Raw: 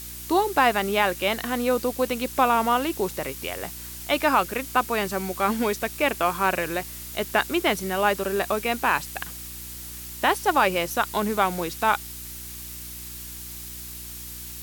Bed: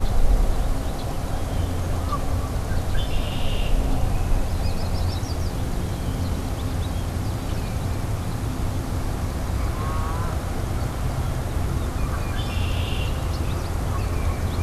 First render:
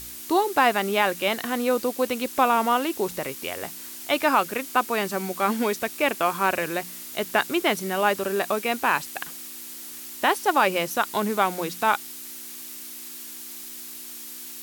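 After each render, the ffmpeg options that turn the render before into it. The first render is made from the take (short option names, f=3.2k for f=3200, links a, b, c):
-af "bandreject=f=60:t=h:w=4,bandreject=f=120:t=h:w=4,bandreject=f=180:t=h:w=4"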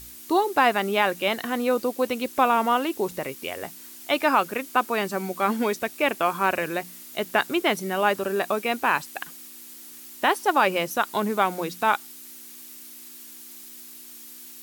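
-af "afftdn=nr=6:nf=-39"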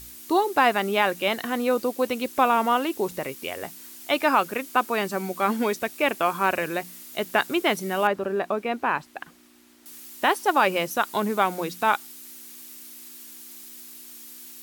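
-filter_complex "[0:a]asettb=1/sr,asplit=3[a][b][c];[a]atrim=end=8.074[d];[b]atrim=start=8.07:end=9.86,asetpts=PTS-STARTPTS,afade=t=in:d=0.004:c=qsin,afade=t=out:st=1.786:d=0.004:c=qsin,lowpass=f=1.4k:p=1[e];[c]atrim=start=9.856[f];[d][e]acrossfade=d=0.004:c1=hsin:c2=qsin[g];[g][f]acrossfade=d=0.004:c1=qsin:c2=hsin"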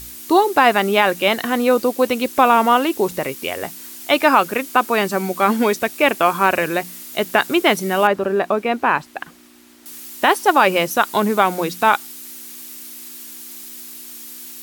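-af "volume=7.5dB,alimiter=limit=-2dB:level=0:latency=1"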